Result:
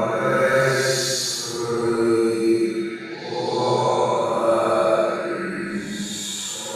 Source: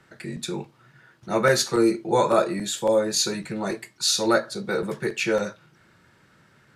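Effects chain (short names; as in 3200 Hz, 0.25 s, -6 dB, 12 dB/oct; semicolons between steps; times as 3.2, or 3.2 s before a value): delay with a stepping band-pass 0.521 s, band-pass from 3000 Hz, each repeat -0.7 oct, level -6 dB; Paulstretch 4.7×, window 0.25 s, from 1.36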